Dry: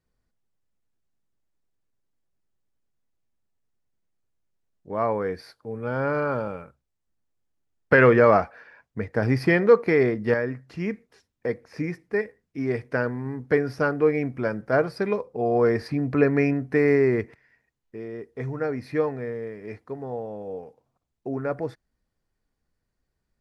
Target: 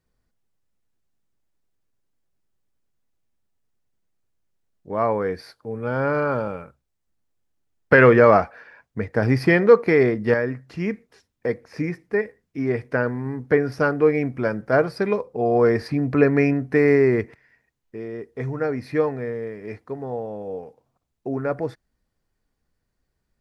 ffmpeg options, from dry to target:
ffmpeg -i in.wav -filter_complex "[0:a]asettb=1/sr,asplit=3[link_01][link_02][link_03];[link_01]atrim=end=11.894[link_04];[link_02]atrim=start=11.89:end=13.72,asetpts=PTS-STARTPTS,afade=type=in:duration=0.004:curve=qsin,afade=type=out:start_time=1.826:duration=0.004:curve=qsin,acrossover=split=3100[link_05][link_06];[link_06]acompressor=threshold=-55dB:ratio=4:attack=1:release=60[link_07];[link_05][link_07]amix=inputs=2:normalize=0[link_08];[link_03]atrim=start=13.716[link_09];[link_04][link_08]acrossfade=duration=0.004:curve1=hsin:curve2=qsin[link_10];[link_10][link_09]acrossfade=duration=0.004:curve1=qsin:curve2=hsin,volume=3dB" out.wav

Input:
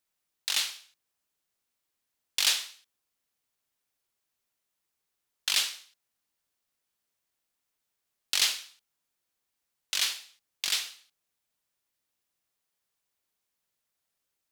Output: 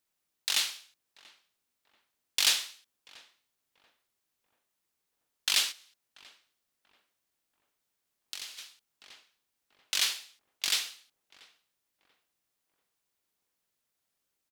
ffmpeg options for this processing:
ffmpeg -i in.wav -filter_complex "[0:a]equalizer=frequency=270:width_type=o:width=1.5:gain=3,asplit=2[link_01][link_02];[link_02]adelay=686,lowpass=frequency=1200:poles=1,volume=-18.5dB,asplit=2[link_03][link_04];[link_04]adelay=686,lowpass=frequency=1200:poles=1,volume=0.44,asplit=2[link_05][link_06];[link_06]adelay=686,lowpass=frequency=1200:poles=1,volume=0.44,asplit=2[link_07][link_08];[link_08]adelay=686,lowpass=frequency=1200:poles=1,volume=0.44[link_09];[link_01][link_03][link_05][link_07][link_09]amix=inputs=5:normalize=0,asplit=3[link_10][link_11][link_12];[link_10]afade=type=out:start_time=5.71:duration=0.02[link_13];[link_11]acompressor=threshold=-39dB:ratio=8,afade=type=in:start_time=5.71:duration=0.02,afade=type=out:start_time=8.57:duration=0.02[link_14];[link_12]afade=type=in:start_time=8.57:duration=0.02[link_15];[link_13][link_14][link_15]amix=inputs=3:normalize=0" out.wav

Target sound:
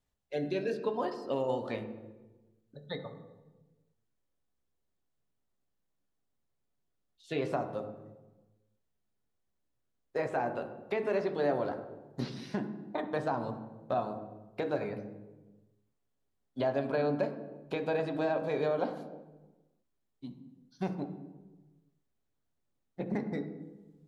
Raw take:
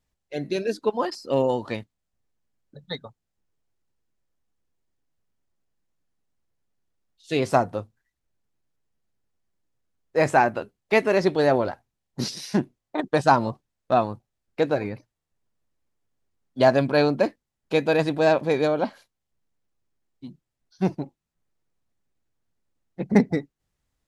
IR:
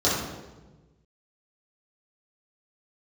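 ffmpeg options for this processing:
-filter_complex "[0:a]acrossover=split=3500[link_01][link_02];[link_02]acompressor=threshold=-48dB:ratio=4:attack=1:release=60[link_03];[link_01][link_03]amix=inputs=2:normalize=0,alimiter=limit=-14.5dB:level=0:latency=1:release=466,acrossover=split=760|4200[link_04][link_05][link_06];[link_04]acompressor=threshold=-27dB:ratio=4[link_07];[link_05]acompressor=threshold=-32dB:ratio=4[link_08];[link_06]acompressor=threshold=-53dB:ratio=4[link_09];[link_07][link_08][link_09]amix=inputs=3:normalize=0,asplit=2[link_10][link_11];[1:a]atrim=start_sample=2205,lowpass=4100,lowshelf=frequency=79:gain=-9.5[link_12];[link_11][link_12]afir=irnorm=-1:irlink=0,volume=-20.5dB[link_13];[link_10][link_13]amix=inputs=2:normalize=0,volume=-5.5dB"

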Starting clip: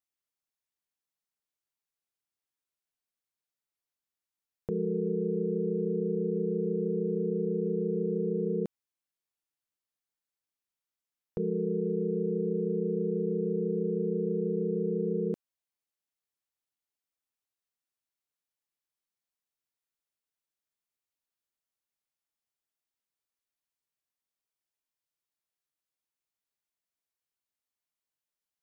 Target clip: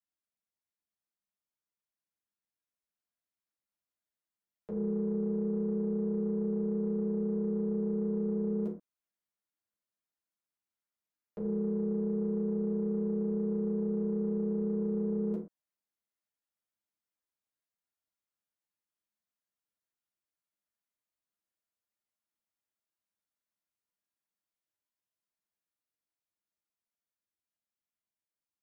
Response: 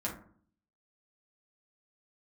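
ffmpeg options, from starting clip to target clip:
-filter_complex "[0:a]acrossover=split=350[link_01][link_02];[link_01]asoftclip=type=tanh:threshold=-35.5dB[link_03];[link_02]dynaudnorm=framelen=470:gausssize=13:maxgain=3dB[link_04];[link_03][link_04]amix=inputs=2:normalize=0[link_05];[1:a]atrim=start_sample=2205,atrim=end_sample=6174[link_06];[link_05][link_06]afir=irnorm=-1:irlink=0,volume=-8.5dB"

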